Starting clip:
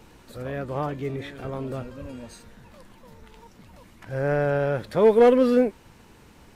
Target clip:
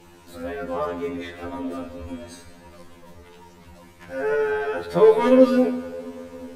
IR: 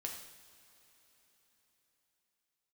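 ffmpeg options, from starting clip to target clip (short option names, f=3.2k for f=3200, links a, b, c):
-filter_complex "[0:a]asplit=2[a][b];[1:a]atrim=start_sample=2205,asetrate=33516,aresample=44100[c];[b][c]afir=irnorm=-1:irlink=0,volume=-0.5dB[d];[a][d]amix=inputs=2:normalize=0,afftfilt=real='re*2*eq(mod(b,4),0)':imag='im*2*eq(mod(b,4),0)':win_size=2048:overlap=0.75"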